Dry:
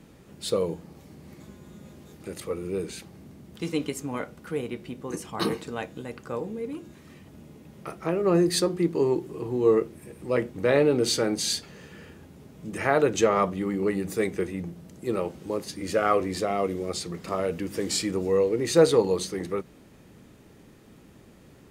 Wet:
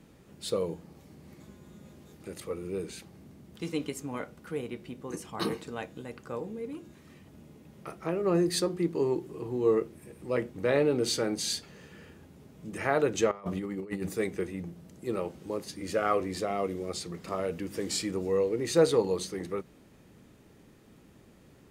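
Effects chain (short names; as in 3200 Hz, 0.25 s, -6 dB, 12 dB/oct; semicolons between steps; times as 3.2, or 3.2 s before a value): 13.31–14.09 negative-ratio compressor -30 dBFS, ratio -0.5; gain -4.5 dB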